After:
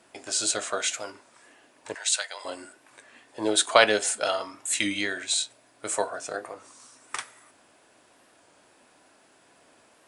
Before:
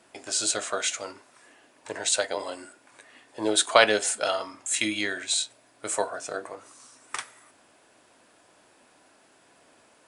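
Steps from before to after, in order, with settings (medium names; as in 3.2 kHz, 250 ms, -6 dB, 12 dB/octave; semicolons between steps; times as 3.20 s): 1.94–2.45 s: high-pass 1.3 kHz 12 dB/octave; warped record 33 1/3 rpm, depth 100 cents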